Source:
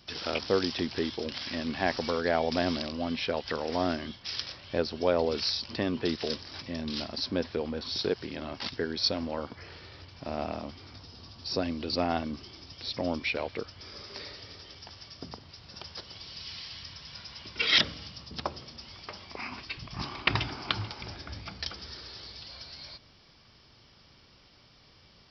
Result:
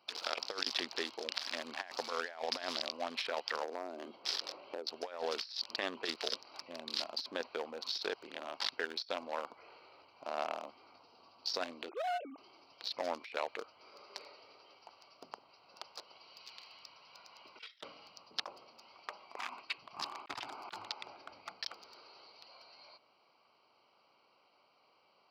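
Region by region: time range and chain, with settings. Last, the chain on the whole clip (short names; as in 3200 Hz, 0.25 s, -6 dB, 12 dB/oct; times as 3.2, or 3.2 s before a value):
3.63–4.87 HPF 94 Hz 24 dB/oct + bell 360 Hz +14 dB 2 oct + compressor 16:1, threshold -29 dBFS
11.89–12.38 sine-wave speech + compressor 12:1, threshold -29 dBFS
whole clip: Wiener smoothing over 25 samples; HPF 930 Hz 12 dB/oct; negative-ratio compressor -39 dBFS, ratio -0.5; gain +1 dB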